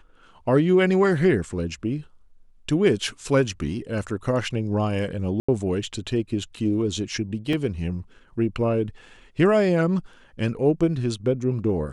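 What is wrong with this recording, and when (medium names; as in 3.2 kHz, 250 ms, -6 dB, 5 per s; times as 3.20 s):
5.40–5.49 s: dropout 85 ms
7.53 s: dropout 3.1 ms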